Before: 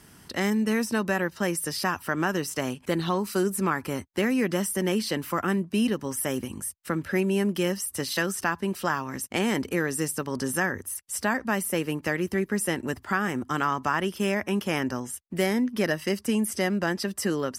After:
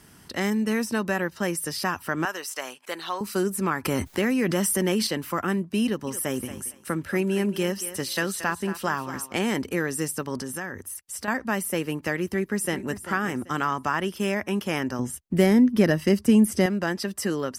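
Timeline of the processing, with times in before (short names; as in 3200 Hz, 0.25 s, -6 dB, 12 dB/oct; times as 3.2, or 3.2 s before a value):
2.25–3.21 HPF 670 Hz
3.85–5.07 fast leveller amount 70%
5.84–9.34 thinning echo 0.228 s, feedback 24%, level -11 dB
10.41–11.28 compressor 2:1, threshold -33 dBFS
12.25–13.02 echo throw 0.39 s, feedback 30%, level -12.5 dB
14.99–16.66 low shelf 400 Hz +11 dB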